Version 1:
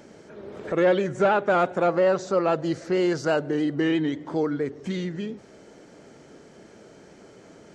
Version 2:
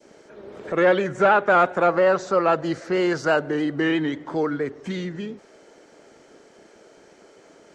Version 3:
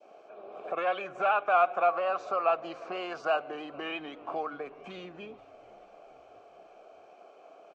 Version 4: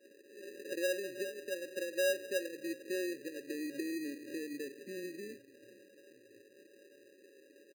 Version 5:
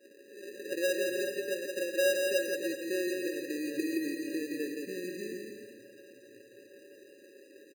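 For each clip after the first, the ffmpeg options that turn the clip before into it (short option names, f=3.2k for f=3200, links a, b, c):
-filter_complex "[0:a]adynamicequalizer=threshold=0.0158:dfrequency=1400:dqfactor=0.7:tfrequency=1400:tqfactor=0.7:attack=5:release=100:ratio=0.375:range=3.5:mode=boostabove:tftype=bell,acrossover=split=290|2500[a][b][c];[a]aeval=exprs='sgn(val(0))*max(abs(val(0))-0.00188,0)':c=same[d];[d][b][c]amix=inputs=3:normalize=0"
-filter_complex "[0:a]acrossover=split=1200[a][b];[a]acompressor=threshold=-28dB:ratio=6[c];[c][b]amix=inputs=2:normalize=0,asplit=3[d][e][f];[d]bandpass=f=730:t=q:w=8,volume=0dB[g];[e]bandpass=f=1.09k:t=q:w=8,volume=-6dB[h];[f]bandpass=f=2.44k:t=q:w=8,volume=-9dB[i];[g][h][i]amix=inputs=3:normalize=0,asplit=5[j][k][l][m][n];[k]adelay=438,afreqshift=-84,volume=-24dB[o];[l]adelay=876,afreqshift=-168,volume=-28.6dB[p];[m]adelay=1314,afreqshift=-252,volume=-33.2dB[q];[n]adelay=1752,afreqshift=-336,volume=-37.7dB[r];[j][o][p][q][r]amix=inputs=5:normalize=0,volume=8.5dB"
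-af "afftfilt=real='re*between(b*sr/4096,100,580)':imag='im*between(b*sr/4096,100,580)':win_size=4096:overlap=0.75,aecho=1:1:3.1:0.68,acrusher=samples=20:mix=1:aa=0.000001"
-af "aecho=1:1:170|289|372.3|430.6|471.4:0.631|0.398|0.251|0.158|0.1,volume=3.5dB"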